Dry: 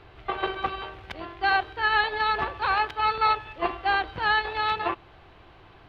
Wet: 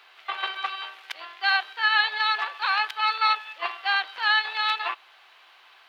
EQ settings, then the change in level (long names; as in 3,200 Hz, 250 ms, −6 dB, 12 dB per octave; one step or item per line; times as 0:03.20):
high-pass filter 870 Hz 12 dB per octave
spectral tilt +3.5 dB per octave
0.0 dB